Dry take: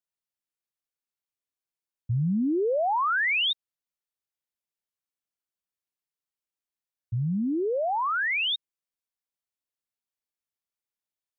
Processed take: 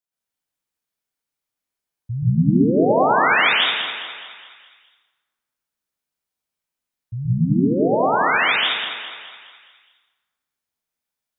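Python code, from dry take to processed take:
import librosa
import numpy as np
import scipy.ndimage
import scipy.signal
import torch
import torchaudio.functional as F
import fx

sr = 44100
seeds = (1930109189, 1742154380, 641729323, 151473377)

y = fx.echo_feedback(x, sr, ms=208, feedback_pct=50, wet_db=-9.5)
y = fx.rev_plate(y, sr, seeds[0], rt60_s=1.4, hf_ratio=0.6, predelay_ms=110, drr_db=-7.0)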